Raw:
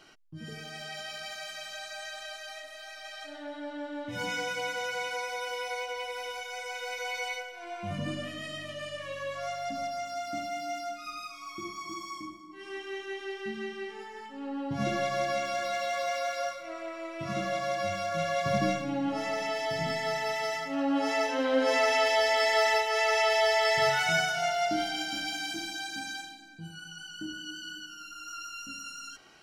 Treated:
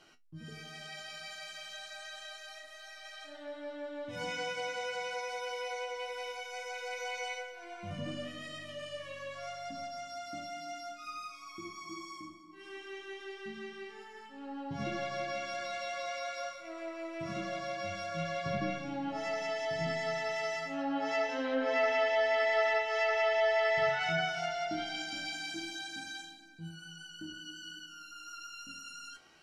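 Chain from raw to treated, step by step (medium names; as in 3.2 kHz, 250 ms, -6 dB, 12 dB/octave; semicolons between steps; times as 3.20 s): low-pass that closes with the level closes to 3 kHz, closed at -22 dBFS; feedback comb 83 Hz, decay 0.16 s, harmonics all, mix 80%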